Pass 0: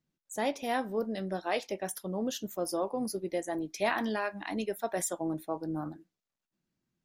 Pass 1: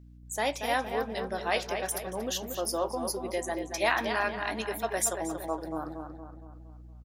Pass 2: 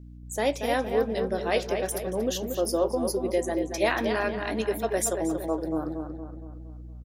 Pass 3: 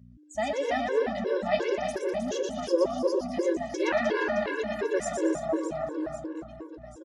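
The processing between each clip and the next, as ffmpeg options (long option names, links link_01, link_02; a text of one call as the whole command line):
ffmpeg -i in.wav -filter_complex "[0:a]highpass=frequency=830:poles=1,aeval=exprs='val(0)+0.00158*(sin(2*PI*60*n/s)+sin(2*PI*2*60*n/s)/2+sin(2*PI*3*60*n/s)/3+sin(2*PI*4*60*n/s)/4+sin(2*PI*5*60*n/s)/5)':channel_layout=same,asplit=2[link_01][link_02];[link_02]adelay=232,lowpass=frequency=2500:poles=1,volume=-6dB,asplit=2[link_03][link_04];[link_04]adelay=232,lowpass=frequency=2500:poles=1,volume=0.51,asplit=2[link_05][link_06];[link_06]adelay=232,lowpass=frequency=2500:poles=1,volume=0.51,asplit=2[link_07][link_08];[link_08]adelay=232,lowpass=frequency=2500:poles=1,volume=0.51,asplit=2[link_09][link_10];[link_10]adelay=232,lowpass=frequency=2500:poles=1,volume=0.51,asplit=2[link_11][link_12];[link_12]adelay=232,lowpass=frequency=2500:poles=1,volume=0.51[link_13];[link_01][link_03][link_05][link_07][link_09][link_11][link_13]amix=inputs=7:normalize=0,volume=6dB" out.wav
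ffmpeg -i in.wav -af "lowshelf=frequency=640:width_type=q:width=1.5:gain=6.5" out.wav
ffmpeg -i in.wav -af "highpass=100,equalizer=frequency=350:width_type=q:width=4:gain=4,equalizer=frequency=620:width_type=q:width=4:gain=5,equalizer=frequency=1200:width_type=q:width=4:gain=4,equalizer=frequency=1700:width_type=q:width=4:gain=4,equalizer=frequency=4200:width_type=q:width=4:gain=-3,lowpass=frequency=7000:width=0.5412,lowpass=frequency=7000:width=1.3066,aecho=1:1:120|312|619.2|1111|1897:0.631|0.398|0.251|0.158|0.1,afftfilt=real='re*gt(sin(2*PI*2.8*pts/sr)*(1-2*mod(floor(b*sr/1024/290),2)),0)':imag='im*gt(sin(2*PI*2.8*pts/sr)*(1-2*mod(floor(b*sr/1024/290),2)),0)':win_size=1024:overlap=0.75,volume=-2dB" out.wav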